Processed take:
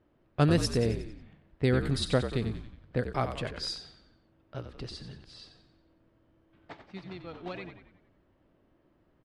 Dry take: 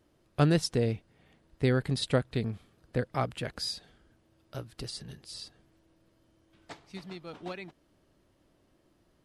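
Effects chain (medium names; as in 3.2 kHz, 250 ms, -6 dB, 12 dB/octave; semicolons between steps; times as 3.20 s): frequency-shifting echo 91 ms, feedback 51%, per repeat -52 Hz, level -9 dB; level-controlled noise filter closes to 2.2 kHz, open at -26 dBFS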